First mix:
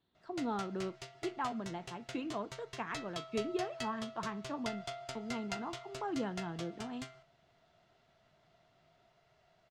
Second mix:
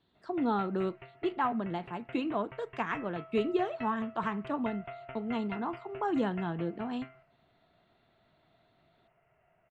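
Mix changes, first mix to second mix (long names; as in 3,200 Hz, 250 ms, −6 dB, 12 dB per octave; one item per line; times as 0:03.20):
speech +7.0 dB
background: add Butterworth low-pass 2,800 Hz 72 dB per octave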